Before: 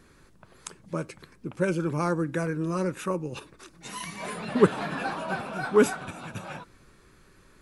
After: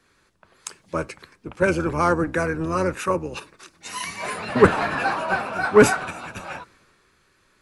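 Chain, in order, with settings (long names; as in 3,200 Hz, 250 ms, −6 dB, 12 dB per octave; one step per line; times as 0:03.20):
sub-octave generator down 1 octave, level −2 dB
mid-hump overdrive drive 15 dB, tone 4,600 Hz, clips at −5.5 dBFS
dynamic equaliser 3,400 Hz, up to −7 dB, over −52 dBFS, Q 4.6
multiband upward and downward expander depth 40%
level +1 dB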